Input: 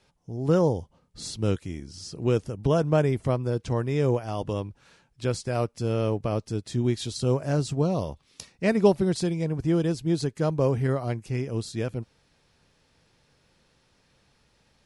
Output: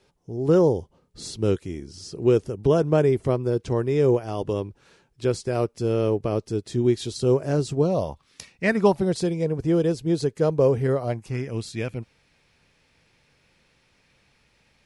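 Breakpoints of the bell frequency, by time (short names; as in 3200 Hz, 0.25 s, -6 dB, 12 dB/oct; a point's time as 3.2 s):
bell +8.5 dB 0.6 oct
7.84 s 390 Hz
8.53 s 2800 Hz
9.17 s 460 Hz
11.01 s 460 Hz
11.54 s 2300 Hz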